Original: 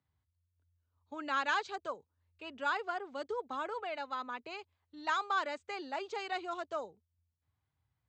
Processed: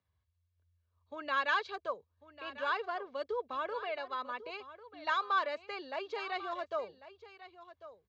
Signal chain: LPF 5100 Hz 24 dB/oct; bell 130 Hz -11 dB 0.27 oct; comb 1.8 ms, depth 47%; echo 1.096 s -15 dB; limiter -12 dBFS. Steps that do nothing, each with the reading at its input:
limiter -12 dBFS: input peak -19.0 dBFS

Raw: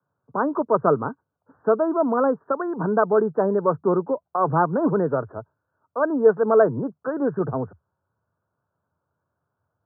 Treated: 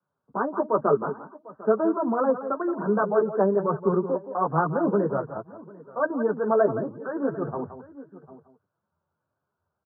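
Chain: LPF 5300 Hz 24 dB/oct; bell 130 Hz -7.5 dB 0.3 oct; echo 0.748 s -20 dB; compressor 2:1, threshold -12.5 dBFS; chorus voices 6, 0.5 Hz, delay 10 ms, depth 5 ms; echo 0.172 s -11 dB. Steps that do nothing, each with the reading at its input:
LPF 5300 Hz: input band ends at 1600 Hz

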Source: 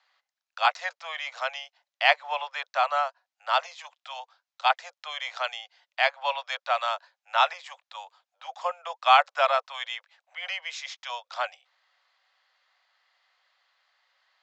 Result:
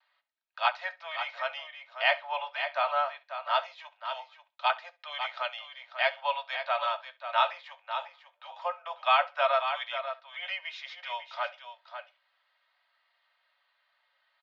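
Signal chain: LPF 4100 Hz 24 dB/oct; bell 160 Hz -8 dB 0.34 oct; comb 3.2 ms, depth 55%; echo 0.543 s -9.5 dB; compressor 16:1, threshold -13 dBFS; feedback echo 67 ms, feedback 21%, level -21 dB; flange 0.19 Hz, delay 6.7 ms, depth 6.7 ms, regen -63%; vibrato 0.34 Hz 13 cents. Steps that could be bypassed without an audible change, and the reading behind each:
bell 160 Hz: input band starts at 480 Hz

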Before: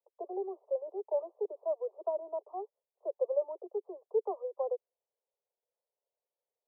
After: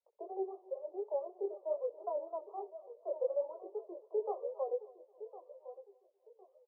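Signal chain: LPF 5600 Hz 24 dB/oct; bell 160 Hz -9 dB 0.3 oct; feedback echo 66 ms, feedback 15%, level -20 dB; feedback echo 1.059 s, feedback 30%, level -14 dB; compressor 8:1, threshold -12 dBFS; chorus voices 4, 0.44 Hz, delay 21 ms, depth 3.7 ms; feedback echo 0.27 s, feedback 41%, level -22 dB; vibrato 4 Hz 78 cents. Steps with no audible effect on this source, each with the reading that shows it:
LPF 5600 Hz: input band ends at 1100 Hz; bell 160 Hz: input band starts at 300 Hz; compressor, threshold -12 dBFS: input peak -20.5 dBFS

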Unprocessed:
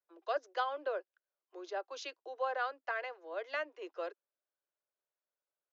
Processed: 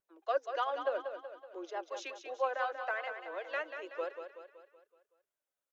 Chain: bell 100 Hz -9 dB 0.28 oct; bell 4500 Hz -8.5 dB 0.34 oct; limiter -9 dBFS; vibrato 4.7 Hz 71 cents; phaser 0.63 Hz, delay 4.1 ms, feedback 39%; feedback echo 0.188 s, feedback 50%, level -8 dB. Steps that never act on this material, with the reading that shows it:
bell 100 Hz: input band starts at 270 Hz; limiter -9 dBFS: input peak -22.0 dBFS

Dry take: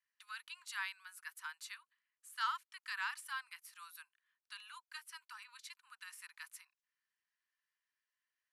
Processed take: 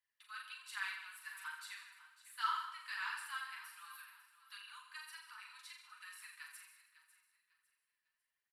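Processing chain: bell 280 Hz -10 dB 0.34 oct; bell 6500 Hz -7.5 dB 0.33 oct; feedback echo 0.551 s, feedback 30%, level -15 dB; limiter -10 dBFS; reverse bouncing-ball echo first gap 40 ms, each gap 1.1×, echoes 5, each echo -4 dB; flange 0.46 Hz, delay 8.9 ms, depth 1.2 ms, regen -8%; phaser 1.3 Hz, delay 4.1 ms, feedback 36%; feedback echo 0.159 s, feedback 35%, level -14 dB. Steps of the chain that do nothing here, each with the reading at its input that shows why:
bell 280 Hz: input band starts at 760 Hz; limiter -10 dBFS: input peak -26.0 dBFS

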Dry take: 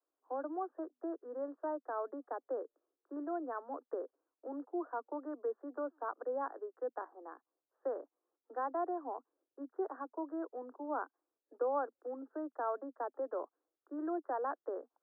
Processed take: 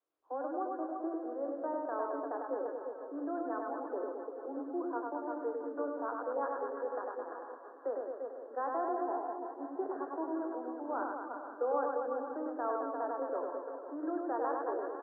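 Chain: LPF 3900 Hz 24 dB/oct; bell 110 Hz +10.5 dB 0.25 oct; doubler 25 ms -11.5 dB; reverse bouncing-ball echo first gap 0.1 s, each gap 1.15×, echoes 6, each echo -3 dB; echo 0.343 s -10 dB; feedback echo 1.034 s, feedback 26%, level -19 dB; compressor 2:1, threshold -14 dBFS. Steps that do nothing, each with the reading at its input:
LPF 3900 Hz: input band ends at 1700 Hz; bell 110 Hz: input band starts at 230 Hz; compressor, threshold -14 dBFS: input peak -21.0 dBFS

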